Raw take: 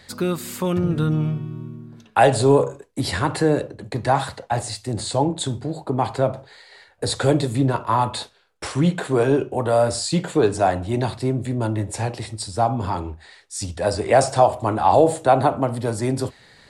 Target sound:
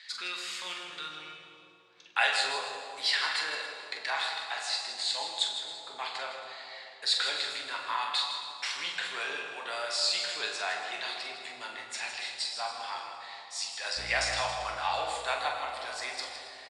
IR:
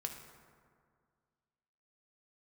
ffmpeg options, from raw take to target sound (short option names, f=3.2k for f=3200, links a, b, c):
-filter_complex "[0:a]asuperpass=centerf=3100:order=4:qfactor=0.87,aecho=1:1:45|160|275:0.398|0.316|0.141,asettb=1/sr,asplit=3[a][b][c];[a]atrim=end=13.974[d];[b]atrim=start=13.97:end=14.4,asetpts=PTS-STARTPTS,afade=t=in:d=0.004:c=qsin,afade=t=out:st=0.426:d=0.004:c=qsin,aeval=exprs='val(0)+0.00447*(sin(2*PI*60*n/s)+sin(2*PI*2*60*n/s)/2+sin(2*PI*3*60*n/s)/3+sin(2*PI*4*60*n/s)/4+sin(2*PI*5*60*n/s)/5)':c=same[e];[c]atrim=start=14.396[f];[d][e]acrossfade=d=0.004:c1=hsin:c2=qsin[g];[g][f]acrossfade=d=0.004:c1=qsin:c2=hsin[h];[1:a]atrim=start_sample=2205,asetrate=22491,aresample=44100[i];[h][i]afir=irnorm=-1:irlink=0"